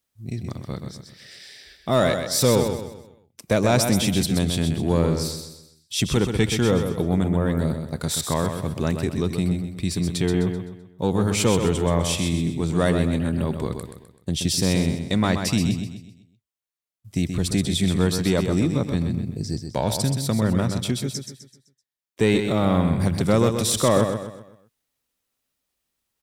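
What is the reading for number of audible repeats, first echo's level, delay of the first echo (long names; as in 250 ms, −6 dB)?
4, −7.0 dB, 128 ms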